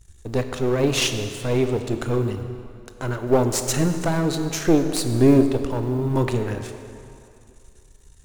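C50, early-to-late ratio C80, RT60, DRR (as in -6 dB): 8.0 dB, 8.5 dB, 2.6 s, 7.0 dB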